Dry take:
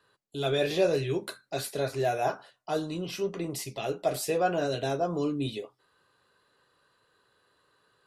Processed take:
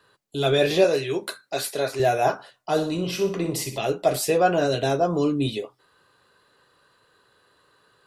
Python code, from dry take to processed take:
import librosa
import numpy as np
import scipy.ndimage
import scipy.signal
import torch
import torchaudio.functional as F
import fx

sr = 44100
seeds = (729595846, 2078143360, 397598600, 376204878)

y = fx.highpass(x, sr, hz=390.0, slope=6, at=(0.84, 2.0))
y = fx.room_flutter(y, sr, wall_m=10.6, rt60_s=0.42, at=(2.76, 3.77), fade=0.02)
y = F.gain(torch.from_numpy(y), 7.0).numpy()